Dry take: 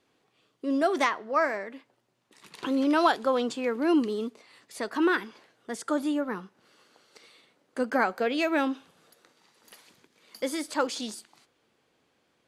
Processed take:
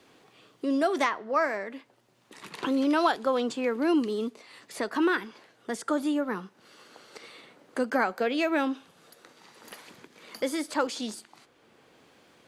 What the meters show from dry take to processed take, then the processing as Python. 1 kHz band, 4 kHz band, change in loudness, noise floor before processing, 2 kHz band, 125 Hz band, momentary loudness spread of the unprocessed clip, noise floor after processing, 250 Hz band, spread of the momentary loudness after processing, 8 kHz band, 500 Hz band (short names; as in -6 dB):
-1.0 dB, -0.5 dB, -0.5 dB, -72 dBFS, -0.5 dB, n/a, 14 LU, -63 dBFS, 0.0 dB, 21 LU, -0.5 dB, 0.0 dB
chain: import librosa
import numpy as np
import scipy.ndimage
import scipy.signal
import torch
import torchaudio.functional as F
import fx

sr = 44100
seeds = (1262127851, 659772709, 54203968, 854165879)

y = fx.band_squash(x, sr, depth_pct=40)